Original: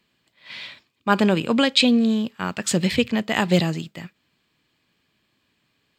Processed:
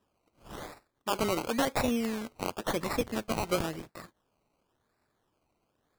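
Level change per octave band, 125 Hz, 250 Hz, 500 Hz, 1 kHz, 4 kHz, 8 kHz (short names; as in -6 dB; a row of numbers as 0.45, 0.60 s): -14.0, -13.5, -7.5, -6.5, -15.0, -9.0 dB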